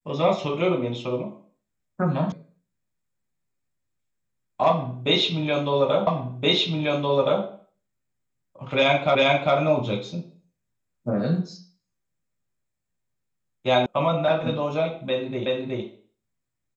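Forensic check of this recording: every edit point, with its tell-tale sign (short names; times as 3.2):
2.32 sound cut off
6.07 repeat of the last 1.37 s
9.15 repeat of the last 0.4 s
13.86 sound cut off
15.46 repeat of the last 0.37 s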